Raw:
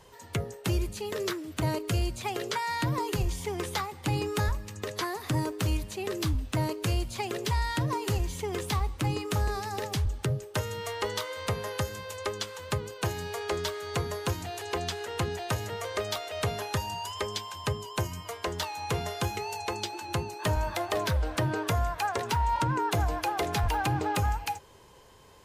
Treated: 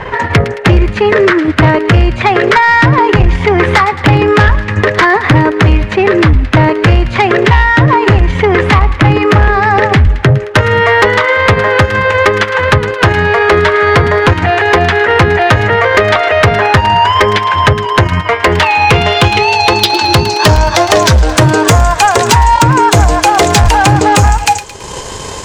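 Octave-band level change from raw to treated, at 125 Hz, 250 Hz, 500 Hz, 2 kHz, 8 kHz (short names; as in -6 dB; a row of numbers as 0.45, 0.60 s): +21.0, +22.0, +23.0, +27.0, +18.0 dB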